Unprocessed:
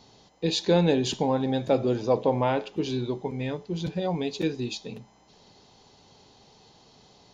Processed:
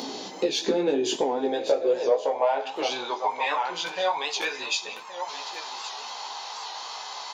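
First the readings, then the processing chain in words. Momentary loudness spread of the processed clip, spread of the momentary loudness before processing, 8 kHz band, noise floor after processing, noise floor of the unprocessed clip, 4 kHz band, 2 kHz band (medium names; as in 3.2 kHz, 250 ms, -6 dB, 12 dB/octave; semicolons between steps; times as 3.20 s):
11 LU, 10 LU, +6.0 dB, -40 dBFS, -58 dBFS, +4.5 dB, +7.5 dB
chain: in parallel at +2.5 dB: upward compressor, threshold -31 dBFS; on the sum: bass shelf 210 Hz -10 dB; on a send: delay 1125 ms -14.5 dB; on the sum: dynamic bell 4.1 kHz, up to -6 dB, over -44 dBFS, Q 5.1; saturation -8 dBFS, distortion -20 dB; high-pass sweep 270 Hz -> 1 kHz, 0.56–3.38 s; compression 6:1, threshold -25 dBFS, peak gain reduction 16.5 dB; chorus voices 4, 0.36 Hz, delay 18 ms, depth 4.1 ms; Schroeder reverb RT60 0.39 s, combs from 26 ms, DRR 14 dB; warped record 78 rpm, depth 100 cents; trim +6.5 dB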